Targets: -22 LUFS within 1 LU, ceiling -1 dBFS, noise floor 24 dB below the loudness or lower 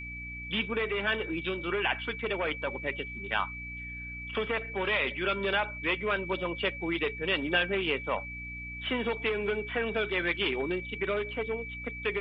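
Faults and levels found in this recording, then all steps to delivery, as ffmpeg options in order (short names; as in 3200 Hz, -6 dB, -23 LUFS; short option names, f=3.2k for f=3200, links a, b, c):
hum 60 Hz; harmonics up to 300 Hz; hum level -42 dBFS; steady tone 2300 Hz; tone level -39 dBFS; loudness -31.0 LUFS; peak -14.0 dBFS; loudness target -22.0 LUFS
-> -af "bandreject=f=60:t=h:w=4,bandreject=f=120:t=h:w=4,bandreject=f=180:t=h:w=4,bandreject=f=240:t=h:w=4,bandreject=f=300:t=h:w=4"
-af "bandreject=f=2.3k:w=30"
-af "volume=9dB"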